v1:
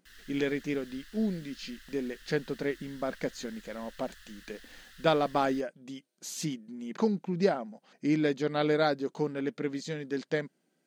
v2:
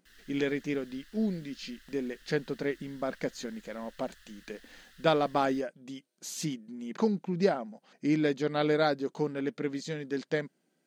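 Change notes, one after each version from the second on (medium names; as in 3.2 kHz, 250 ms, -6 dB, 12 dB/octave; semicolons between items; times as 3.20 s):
background -4.5 dB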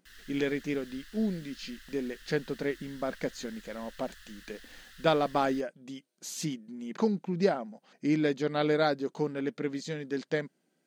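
background +5.5 dB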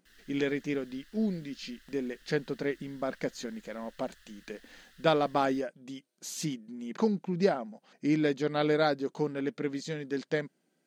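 background -7.5 dB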